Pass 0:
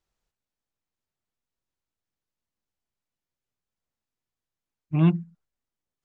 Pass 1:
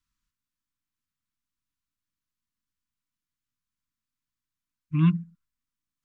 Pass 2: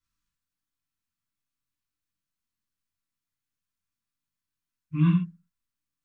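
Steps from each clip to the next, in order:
Chebyshev band-stop filter 310–980 Hz, order 5
reverb whose tail is shaped and stops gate 160 ms falling, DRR −5 dB; level −6.5 dB

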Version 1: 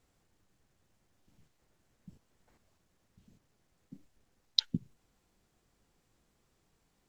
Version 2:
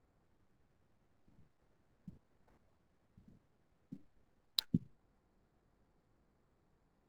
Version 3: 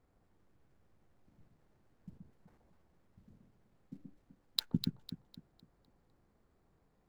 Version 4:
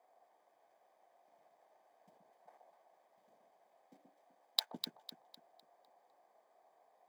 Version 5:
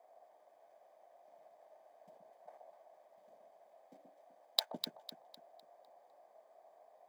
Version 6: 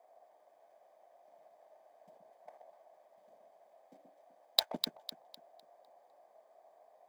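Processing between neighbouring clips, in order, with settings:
running median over 15 samples
delay that swaps between a low-pass and a high-pass 126 ms, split 1,000 Hz, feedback 58%, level −3.5 dB; level +1 dB
high-pass with resonance 690 Hz, resonance Q 4.9; notch comb filter 1,400 Hz; level +2.5 dB
parametric band 610 Hz +10.5 dB 0.46 octaves; level +1 dB
leveller curve on the samples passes 1; level +2 dB

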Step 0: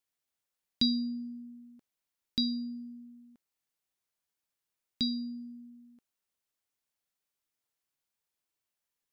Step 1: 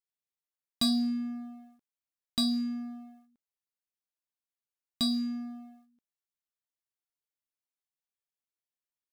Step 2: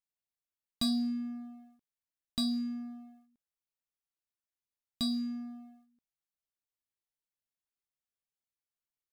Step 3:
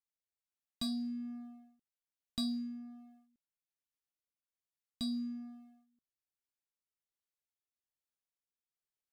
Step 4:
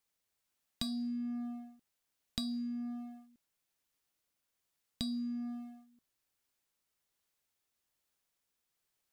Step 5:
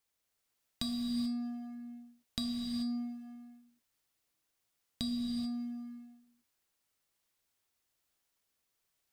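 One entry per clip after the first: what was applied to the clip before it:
leveller curve on the samples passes 3; level −6 dB
low-shelf EQ 130 Hz +9 dB; level −5 dB
rotating-speaker cabinet horn 1.2 Hz; level −3.5 dB
downward compressor 6 to 1, threshold −47 dBFS, peak gain reduction 14.5 dB; level +11 dB
reverb whose tail is shaped and stops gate 460 ms flat, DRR 1.5 dB

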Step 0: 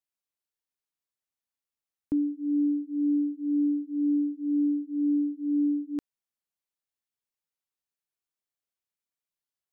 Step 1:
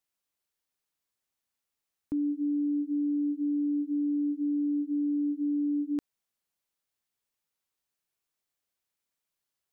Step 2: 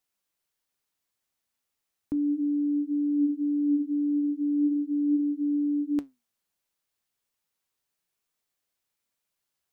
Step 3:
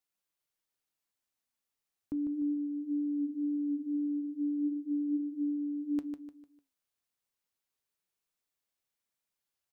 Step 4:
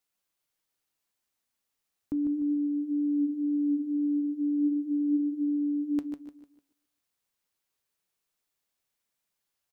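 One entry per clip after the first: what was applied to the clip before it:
brickwall limiter −30.5 dBFS, peak gain reduction 10 dB; level +5.5 dB
flanger 0.36 Hz, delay 3.8 ms, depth 9.7 ms, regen +79%; level +7.5 dB
repeating echo 150 ms, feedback 38%, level −7 dB; level −6.5 dB
repeating echo 134 ms, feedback 30%, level −14.5 dB; level +4.5 dB

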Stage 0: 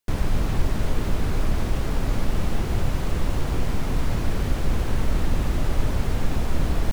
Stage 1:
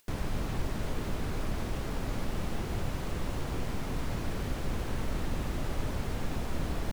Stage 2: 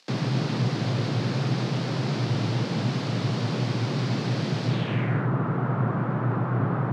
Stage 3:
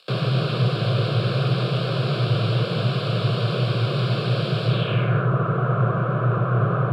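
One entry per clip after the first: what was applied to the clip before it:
low-shelf EQ 87 Hz −6.5 dB; upward compression, threshold −44 dBFS; level −6.5 dB
surface crackle 200 per second −51 dBFS; low-pass filter sweep 4,600 Hz → 1,200 Hz, 0:04.67–0:05.30; frequency shifter +110 Hz; level +5.5 dB
phaser with its sweep stopped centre 1,300 Hz, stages 8; level +8 dB

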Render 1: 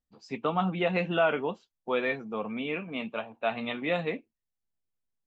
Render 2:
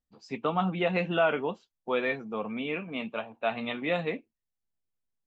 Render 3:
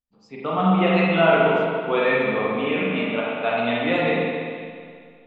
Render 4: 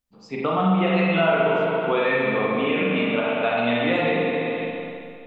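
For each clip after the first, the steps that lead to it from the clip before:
no processing that can be heard
automatic gain control gain up to 11.5 dB; spring reverb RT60 2.1 s, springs 37/42 ms, chirp 30 ms, DRR −5.5 dB; level −7 dB
downward compressor 2.5 to 1, threshold −30 dBFS, peak gain reduction 12 dB; on a send: flutter between parallel walls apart 10.1 metres, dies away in 0.32 s; on the sum: level +7.5 dB

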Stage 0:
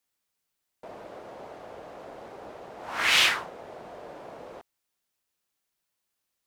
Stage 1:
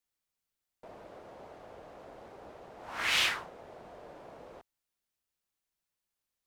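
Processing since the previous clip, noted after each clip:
low-shelf EQ 89 Hz +9 dB
level −7 dB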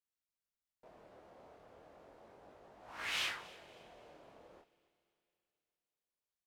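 chorus effect 0.34 Hz, delay 19 ms, depth 7.9 ms
repeating echo 279 ms, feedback 36%, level −22 dB
four-comb reverb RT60 3.3 s, combs from 26 ms, DRR 20 dB
level −6.5 dB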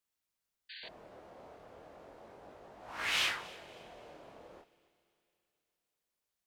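sound drawn into the spectrogram noise, 0:00.69–0:00.89, 1,500–4,700 Hz −54 dBFS
level +5.5 dB

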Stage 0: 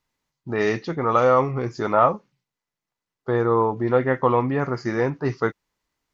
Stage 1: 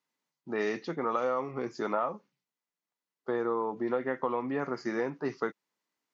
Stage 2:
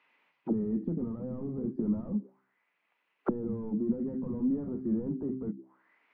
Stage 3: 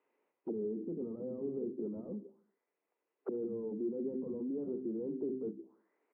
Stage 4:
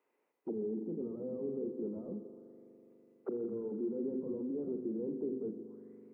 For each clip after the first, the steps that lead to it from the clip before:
high-pass filter 180 Hz 24 dB per octave; downward compressor 10 to 1, threshold −19 dBFS, peak gain reduction 9 dB; level −6.5 dB
hum removal 64.91 Hz, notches 6; mid-hump overdrive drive 30 dB, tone 1,300 Hz, clips at −15.5 dBFS; envelope-controlled low-pass 210–2,600 Hz down, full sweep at −25 dBFS; level −5 dB
brickwall limiter −28.5 dBFS, peak gain reduction 11 dB; resonant band-pass 410 Hz, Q 2.8; repeating echo 78 ms, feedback 56%, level −23 dB; level +4.5 dB
spring reverb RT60 3.9 s, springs 41 ms, chirp 50 ms, DRR 8.5 dB

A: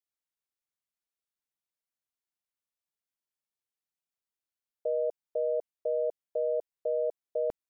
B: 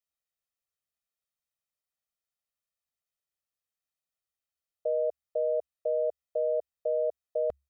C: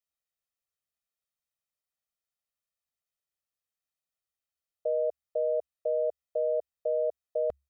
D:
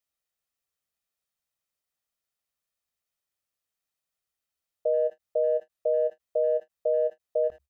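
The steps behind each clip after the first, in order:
parametric band 69 Hz +8 dB 0.21 octaves; comb filter 1.6 ms; level −2 dB
no processing that can be heard
far-end echo of a speakerphone 80 ms, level −21 dB; every ending faded ahead of time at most 540 dB per second; level +4 dB

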